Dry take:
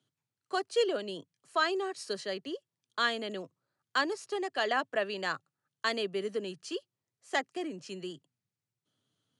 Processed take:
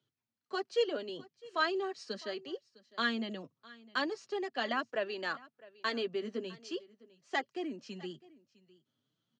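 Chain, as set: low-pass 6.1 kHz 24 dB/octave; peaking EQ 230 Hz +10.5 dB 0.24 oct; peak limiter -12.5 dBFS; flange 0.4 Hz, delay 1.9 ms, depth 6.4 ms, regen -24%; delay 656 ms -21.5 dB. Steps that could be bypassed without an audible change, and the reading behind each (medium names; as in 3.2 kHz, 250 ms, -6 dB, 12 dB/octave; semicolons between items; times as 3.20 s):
peak limiter -12.5 dBFS: peak at its input -15.5 dBFS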